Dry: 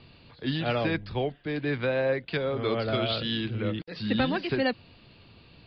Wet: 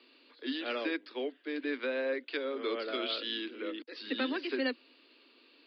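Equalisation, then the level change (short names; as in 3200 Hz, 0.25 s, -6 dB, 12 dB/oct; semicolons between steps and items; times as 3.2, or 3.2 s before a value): steep high-pass 250 Hz 96 dB/oct; bell 750 Hz -10 dB 0.65 oct; -4.0 dB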